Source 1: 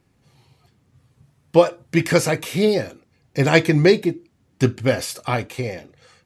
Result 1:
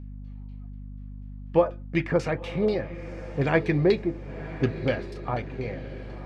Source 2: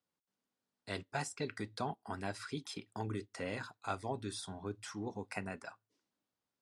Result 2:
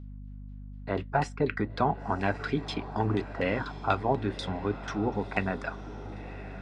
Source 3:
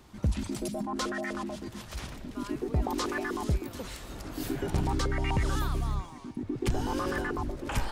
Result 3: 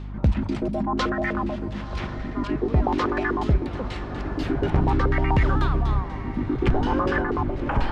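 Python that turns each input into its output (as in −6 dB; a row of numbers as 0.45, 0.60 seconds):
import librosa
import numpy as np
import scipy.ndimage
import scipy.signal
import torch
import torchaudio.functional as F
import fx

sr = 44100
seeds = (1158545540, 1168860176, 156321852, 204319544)

y = fx.filter_lfo_lowpass(x, sr, shape='saw_down', hz=4.1, low_hz=810.0, high_hz=3900.0, q=1.1)
y = fx.echo_diffused(y, sr, ms=1021, feedback_pct=48, wet_db=-14)
y = fx.add_hum(y, sr, base_hz=50, snr_db=11)
y = librosa.util.normalize(y) * 10.0 ** (-9 / 20.0)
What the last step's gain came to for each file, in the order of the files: −7.5, +11.5, +7.5 decibels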